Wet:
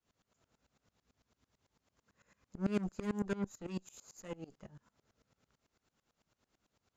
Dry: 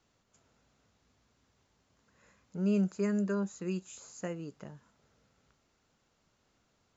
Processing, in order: added harmonics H 8 -19 dB, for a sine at -21 dBFS; dB-ramp tremolo swelling 9 Hz, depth 22 dB; gain +1 dB

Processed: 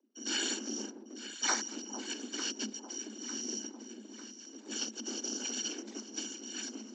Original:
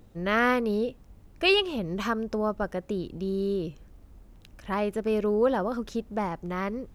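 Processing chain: FFT order left unsorted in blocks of 256 samples; low shelf 210 Hz +7.5 dB; gate with hold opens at -35 dBFS; whisperiser; frequency shift +210 Hz; downsampling 16000 Hz; on a send: echo with dull and thin repeats by turns 0.45 s, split 940 Hz, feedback 70%, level -9 dB; on the sum: gain -6 dB

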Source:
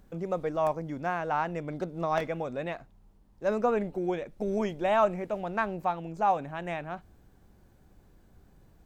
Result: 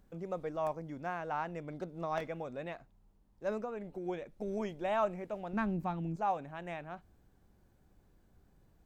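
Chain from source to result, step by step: 3.57–4.06 compressor 5:1, threshold -30 dBFS, peak gain reduction 8 dB; 5.53–6.16 resonant low shelf 360 Hz +9.5 dB, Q 1.5; gain -7.5 dB

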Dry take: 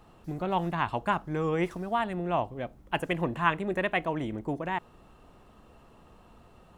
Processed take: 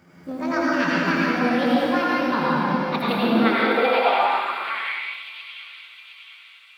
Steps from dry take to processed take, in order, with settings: gliding pitch shift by +10 st ending unshifted; low shelf 160 Hz +6.5 dB; split-band echo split 1100 Hz, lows 0.226 s, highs 0.713 s, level -11 dB; reverb RT60 2.7 s, pre-delay 77 ms, DRR -6.5 dB; high-pass sweep 170 Hz -> 2800 Hz, 3.12–5.22

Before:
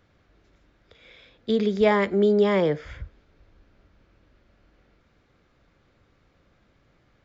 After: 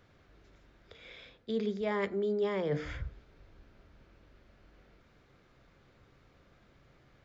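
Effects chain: notches 60/120/180/240/300 Hz; reverse; compressor 8:1, threshold -30 dBFS, peak gain reduction 15.5 dB; reverse; reverb RT60 0.55 s, pre-delay 3 ms, DRR 14.5 dB

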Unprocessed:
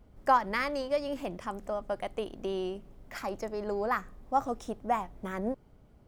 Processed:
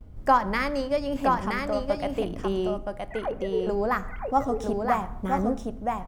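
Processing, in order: 2.78–3.67 sine-wave speech; gate with hold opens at -55 dBFS; low shelf 200 Hz +11 dB; echo 0.971 s -3.5 dB; reverb, pre-delay 5 ms, DRR 13.5 dB; gain +3 dB

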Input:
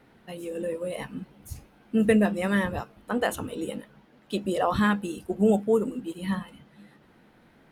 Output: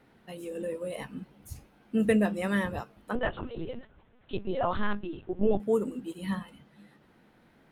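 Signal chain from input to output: 3.15–5.6 LPC vocoder at 8 kHz pitch kept; gain -3.5 dB

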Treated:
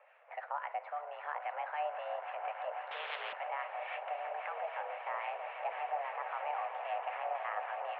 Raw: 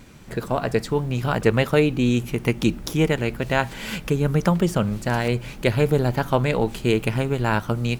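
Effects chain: limiter -16.5 dBFS, peak gain reduction 12 dB; mistuned SSB +300 Hz 310–2200 Hz; swelling echo 0.164 s, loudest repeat 8, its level -12.5 dB; harmonic tremolo 3.7 Hz, depth 50%, crossover 1100 Hz; 2.91–3.33 spectral compressor 4:1; gain -7.5 dB

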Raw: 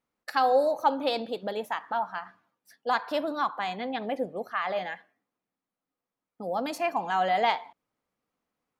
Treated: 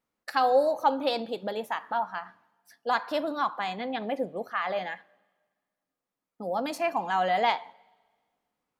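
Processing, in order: two-slope reverb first 0.21 s, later 1.6 s, from -18 dB, DRR 17.5 dB; wow and flutter 20 cents

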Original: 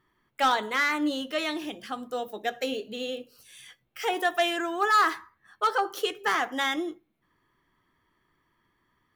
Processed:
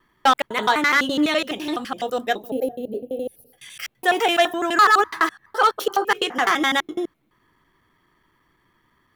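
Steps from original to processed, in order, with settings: slices in reverse order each 84 ms, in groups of 3; spectral gain 2.5–3.58, 840–9600 Hz -22 dB; gain +7.5 dB

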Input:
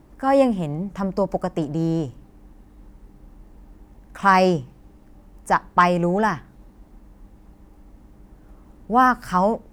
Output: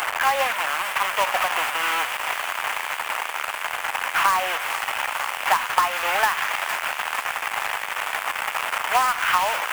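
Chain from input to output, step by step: delta modulation 16 kbps, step -20 dBFS; HPF 850 Hz 24 dB/oct; compressor 16:1, threshold -25 dBFS, peak gain reduction 11 dB; companded quantiser 4-bit; thin delay 0.458 s, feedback 70%, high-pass 2000 Hz, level -7 dB; gain +9 dB

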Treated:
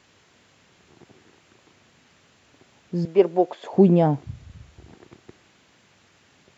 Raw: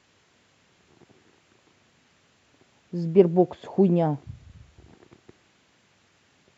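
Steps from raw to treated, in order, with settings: 3.05–3.73 HPF 460 Hz 12 dB/oct; gain +4.5 dB

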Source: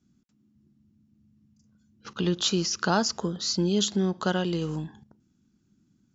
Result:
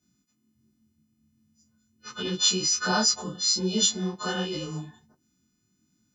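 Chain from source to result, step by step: frequency quantiser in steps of 3 st; detuned doubles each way 46 cents

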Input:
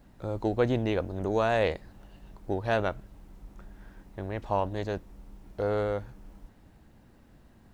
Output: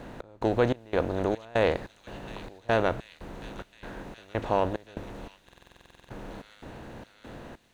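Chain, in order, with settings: per-bin compression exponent 0.6; notches 50/100 Hz; step gate "xx..xxx..xx" 145 bpm -24 dB; on a send: thin delay 0.724 s, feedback 68%, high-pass 3200 Hz, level -9 dB; on the sum: stuck buffer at 5.44, samples 2048, times 13

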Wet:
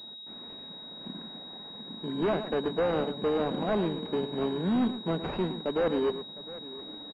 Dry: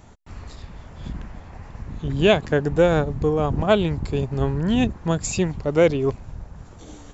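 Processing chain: steep high-pass 190 Hz 36 dB/oct; notch 1200 Hz, Q 9.9; in parallel at -7 dB: sample-rate reducer 1300 Hz; on the sum: hard clip -18.5 dBFS, distortion -6 dB; on a send: tapped delay 0.114/0.709 s -11/-17 dB; on the sum: pulse-width modulation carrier 3800 Hz; gain -5 dB

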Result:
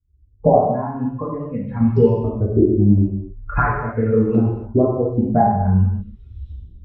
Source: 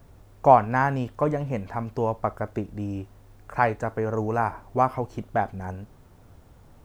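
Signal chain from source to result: per-bin expansion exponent 2; recorder AGC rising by 47 dB/s; HPF 78 Hz 12 dB/oct; tilt -2.5 dB/oct; 0.58–1.81 compressor 2:1, threshold -25 dBFS, peak gain reduction 9 dB; flange 0.81 Hz, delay 2.4 ms, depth 3.2 ms, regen +35%; LFO low-pass saw up 0.46 Hz 320–3200 Hz; non-linear reverb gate 0.33 s falling, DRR -5.5 dB; gain -3.5 dB

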